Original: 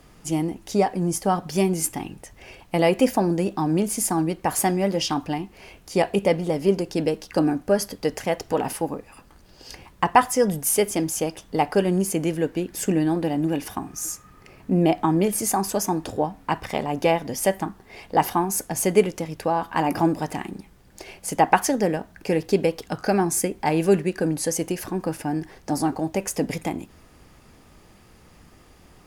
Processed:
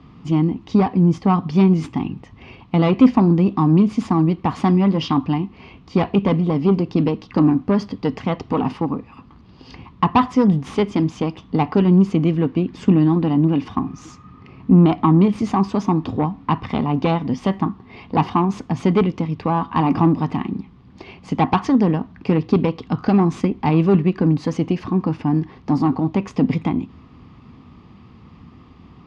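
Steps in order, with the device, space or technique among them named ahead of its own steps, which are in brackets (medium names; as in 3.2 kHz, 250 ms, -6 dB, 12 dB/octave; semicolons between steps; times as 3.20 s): guitar amplifier (valve stage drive 15 dB, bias 0.45; tone controls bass +12 dB, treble +6 dB; cabinet simulation 92–3600 Hz, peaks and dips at 250 Hz +7 dB, 580 Hz -7 dB, 1.1 kHz +10 dB, 1.6 kHz -7 dB); trim +2.5 dB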